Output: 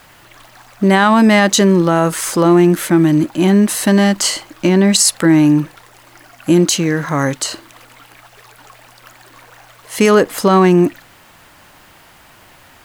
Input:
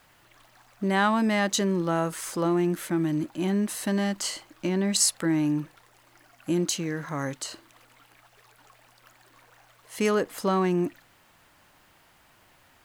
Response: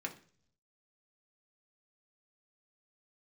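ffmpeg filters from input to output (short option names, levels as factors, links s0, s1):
-af "alimiter=level_in=5.96:limit=0.891:release=50:level=0:latency=1,volume=0.891"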